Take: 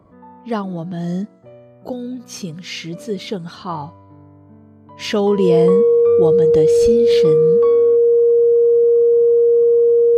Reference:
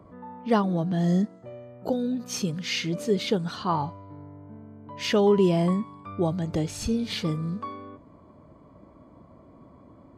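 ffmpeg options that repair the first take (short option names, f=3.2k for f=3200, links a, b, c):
-af "bandreject=f=470:w=30,asetnsamples=n=441:p=0,asendcmd='4.99 volume volume -4dB',volume=0dB"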